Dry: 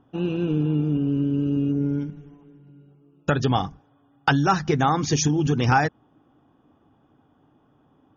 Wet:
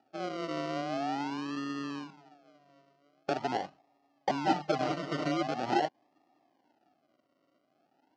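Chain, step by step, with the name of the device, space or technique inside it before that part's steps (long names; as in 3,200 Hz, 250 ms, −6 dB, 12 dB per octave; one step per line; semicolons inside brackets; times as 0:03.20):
circuit-bent sampling toy (sample-and-hold swept by an LFO 41×, swing 60% 0.44 Hz; loudspeaker in its box 450–5,200 Hz, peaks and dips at 470 Hz −10 dB, 740 Hz +5 dB, 1,100 Hz −7 dB, 1,600 Hz −8 dB, 2,300 Hz −8 dB, 3,600 Hz −9 dB)
high-shelf EQ 6,100 Hz −11 dB
0:04.44–0:05.43: comb filter 6.6 ms, depth 92%
level −3.5 dB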